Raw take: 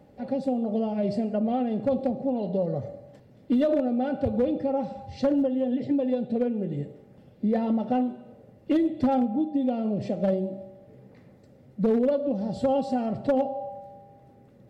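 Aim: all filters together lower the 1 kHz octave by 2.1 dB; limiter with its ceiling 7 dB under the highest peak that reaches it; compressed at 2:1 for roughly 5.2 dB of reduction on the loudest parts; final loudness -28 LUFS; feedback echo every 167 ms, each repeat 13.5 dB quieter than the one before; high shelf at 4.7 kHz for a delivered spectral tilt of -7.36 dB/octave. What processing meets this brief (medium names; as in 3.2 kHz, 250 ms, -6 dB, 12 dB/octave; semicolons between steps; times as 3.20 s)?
peaking EQ 1 kHz -3.5 dB; treble shelf 4.7 kHz +6.5 dB; compression 2:1, threshold -29 dBFS; peak limiter -26 dBFS; feedback delay 167 ms, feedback 21%, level -13.5 dB; trim +6 dB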